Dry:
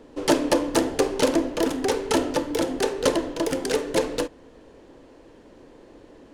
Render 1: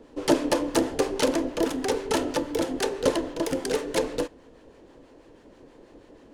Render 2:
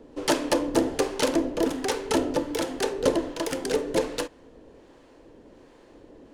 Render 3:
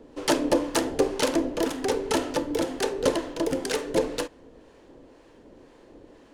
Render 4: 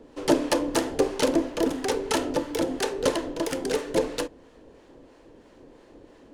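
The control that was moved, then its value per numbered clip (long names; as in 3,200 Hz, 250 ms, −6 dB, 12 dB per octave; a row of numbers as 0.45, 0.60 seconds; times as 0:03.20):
two-band tremolo in antiphase, speed: 6.2, 1.3, 2, 3 Hertz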